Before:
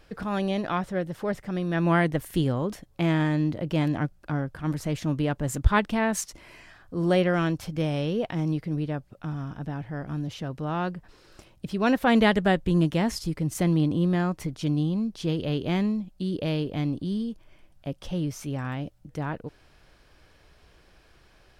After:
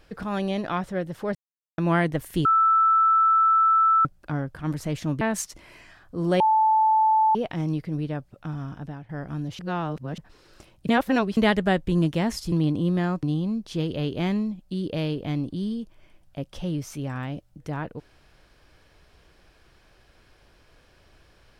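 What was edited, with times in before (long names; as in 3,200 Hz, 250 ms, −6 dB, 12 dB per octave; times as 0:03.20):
0:01.35–0:01.78: silence
0:02.45–0:04.05: beep over 1,320 Hz −15.5 dBFS
0:05.21–0:06.00: remove
0:07.19–0:08.14: beep over 875 Hz −16 dBFS
0:09.44–0:09.88: fade out equal-power, to −13.5 dB
0:10.38–0:10.97: reverse
0:11.68–0:12.16: reverse
0:13.31–0:13.68: remove
0:14.39–0:14.72: remove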